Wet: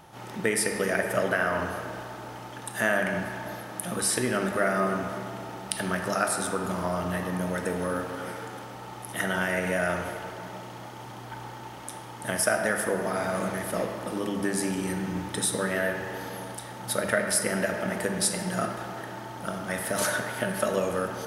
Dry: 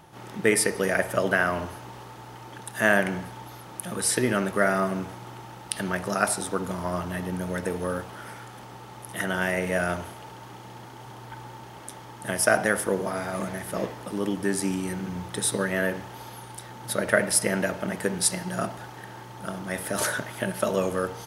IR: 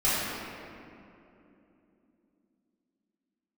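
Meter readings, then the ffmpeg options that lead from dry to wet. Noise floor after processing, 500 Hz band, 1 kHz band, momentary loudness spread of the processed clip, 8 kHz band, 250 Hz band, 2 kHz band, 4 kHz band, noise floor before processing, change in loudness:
-41 dBFS, -1.0 dB, 0.0 dB, 14 LU, -1.5 dB, -1.5 dB, -1.5 dB, -0.5 dB, -44 dBFS, -2.0 dB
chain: -filter_complex "[0:a]bandreject=f=50:t=h:w=6,bandreject=f=100:t=h:w=6,bandreject=f=150:t=h:w=6,bandreject=f=200:t=h:w=6,acompressor=threshold=0.0501:ratio=2,asplit=2[s0][s1];[1:a]atrim=start_sample=2205,lowshelf=f=210:g=-11[s2];[s1][s2]afir=irnorm=-1:irlink=0,volume=0.15[s3];[s0][s3]amix=inputs=2:normalize=0"

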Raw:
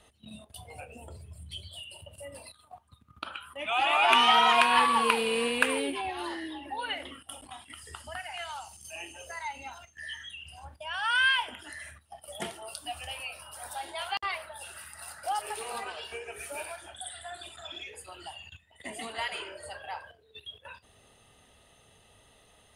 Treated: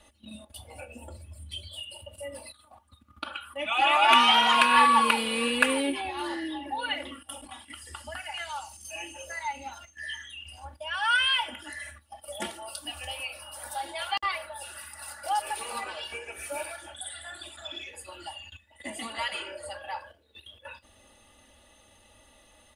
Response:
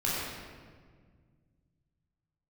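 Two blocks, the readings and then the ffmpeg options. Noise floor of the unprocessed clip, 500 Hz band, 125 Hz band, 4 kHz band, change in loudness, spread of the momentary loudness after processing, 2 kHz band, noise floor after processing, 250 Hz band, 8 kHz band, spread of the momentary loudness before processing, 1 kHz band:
-62 dBFS, -0.5 dB, no reading, +3.0 dB, +2.0 dB, 23 LU, +1.5 dB, -60 dBFS, +4.5 dB, +2.5 dB, 22 LU, +2.5 dB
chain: -af "aecho=1:1:3.5:0.89"

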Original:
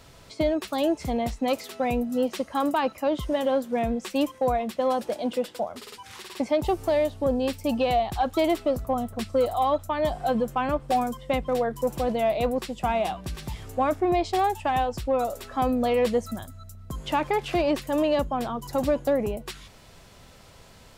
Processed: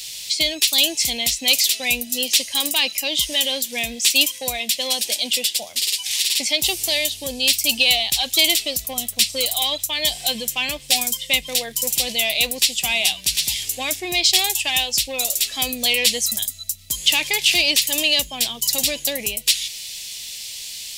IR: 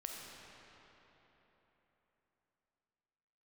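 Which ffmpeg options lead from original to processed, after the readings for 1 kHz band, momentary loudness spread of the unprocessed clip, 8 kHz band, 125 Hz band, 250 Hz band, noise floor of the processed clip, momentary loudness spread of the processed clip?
-7.0 dB, 9 LU, +25.5 dB, -7.0 dB, -7.0 dB, -38 dBFS, 8 LU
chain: -af "aexciter=amount=14.1:drive=9.7:freq=2200,volume=0.447"

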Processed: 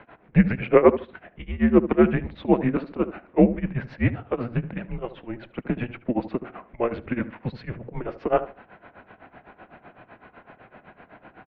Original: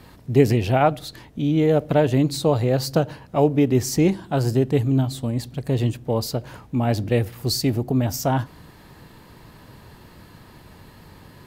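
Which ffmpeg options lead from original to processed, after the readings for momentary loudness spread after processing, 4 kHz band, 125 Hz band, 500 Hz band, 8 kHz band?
17 LU, under -15 dB, -7.5 dB, -2.0 dB, under -40 dB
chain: -filter_complex "[0:a]tremolo=f=7.9:d=0.95,asplit=2[s0][s1];[s1]adelay=74,lowpass=f=920:p=1,volume=0.282,asplit=2[s2][s3];[s3]adelay=74,lowpass=f=920:p=1,volume=0.29,asplit=2[s4][s5];[s5]adelay=74,lowpass=f=920:p=1,volume=0.29[s6];[s0][s2][s4][s6]amix=inputs=4:normalize=0,highpass=f=440:t=q:w=0.5412,highpass=f=440:t=q:w=1.307,lowpass=f=2700:t=q:w=0.5176,lowpass=f=2700:t=q:w=0.7071,lowpass=f=2700:t=q:w=1.932,afreqshift=-240,volume=2.37"

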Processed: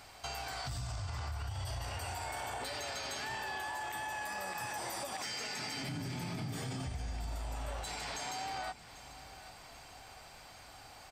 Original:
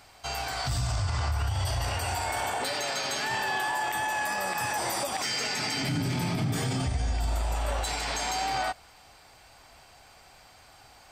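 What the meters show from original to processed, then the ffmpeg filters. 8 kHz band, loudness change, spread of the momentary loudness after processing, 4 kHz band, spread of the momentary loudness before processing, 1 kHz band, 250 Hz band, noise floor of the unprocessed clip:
-10.0 dB, -10.5 dB, 13 LU, -9.5 dB, 2 LU, -10.0 dB, -10.5 dB, -55 dBFS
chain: -filter_complex "[0:a]acompressor=threshold=0.00891:ratio=3,asplit=2[s0][s1];[s1]aecho=0:1:792|1584|2376|3168|3960|4752:0.158|0.0919|0.0533|0.0309|0.0179|0.0104[s2];[s0][s2]amix=inputs=2:normalize=0"

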